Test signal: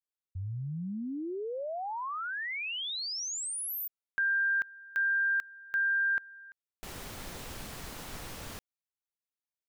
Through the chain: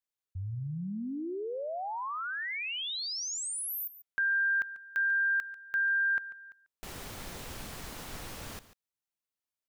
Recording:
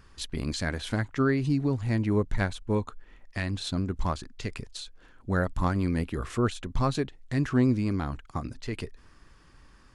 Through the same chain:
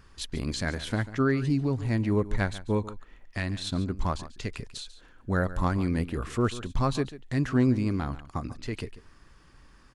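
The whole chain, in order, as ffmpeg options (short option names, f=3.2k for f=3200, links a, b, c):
-af "aecho=1:1:142:0.168"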